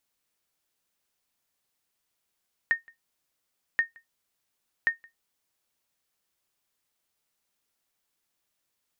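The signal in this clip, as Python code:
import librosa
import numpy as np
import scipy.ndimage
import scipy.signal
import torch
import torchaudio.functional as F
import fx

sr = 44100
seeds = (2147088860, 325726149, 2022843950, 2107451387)

y = fx.sonar_ping(sr, hz=1840.0, decay_s=0.14, every_s=1.08, pings=3, echo_s=0.17, echo_db=-28.0, level_db=-14.5)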